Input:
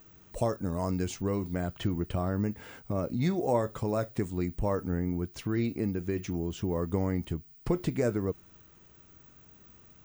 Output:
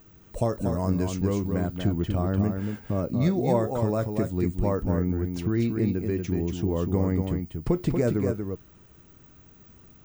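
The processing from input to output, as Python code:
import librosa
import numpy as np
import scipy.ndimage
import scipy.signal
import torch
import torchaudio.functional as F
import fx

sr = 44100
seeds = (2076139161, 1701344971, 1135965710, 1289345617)

y = fx.low_shelf(x, sr, hz=490.0, db=5.5)
y = y + 10.0 ** (-5.5 / 20.0) * np.pad(y, (int(236 * sr / 1000.0), 0))[:len(y)]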